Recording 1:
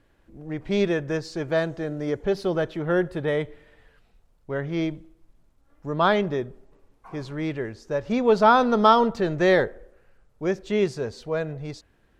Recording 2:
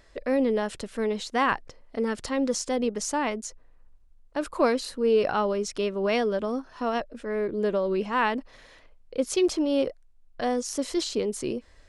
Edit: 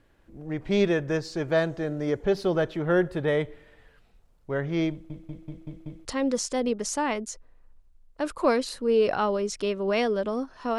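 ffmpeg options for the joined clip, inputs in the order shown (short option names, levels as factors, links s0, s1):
-filter_complex "[0:a]apad=whole_dur=10.78,atrim=end=10.78,asplit=6[s0][s1][s2][s3][s4][s5];[s0]atrim=end=5.102[s6];[s1]atrim=start=4.908:end=5.102[s7];[s2]atrim=start=4.908:end=5.102[s8];[s3]atrim=start=4.908:end=5.102[s9];[s4]atrim=start=4.908:end=5.102[s10];[s5]atrim=start=4.908:end=5.102[s11];[1:a]atrim=start=2.208:end=6.94[s12];[s6][s7]acrossfade=d=0.004:c1=hsin:c2=hsin[s13];[s13][s8]acrossfade=d=0.004:c1=hsin:c2=hsin[s14];[s14][s9]acrossfade=d=0.004:c1=hsin:c2=hsin[s15];[s15][s10]acrossfade=d=0.004:c1=hsin:c2=hsin[s16];[s16][s11]acrossfade=d=0.004:c1=hsin:c2=hsin[s17];[s17][s12]acrossfade=d=0.004:c1=hsin:c2=hsin"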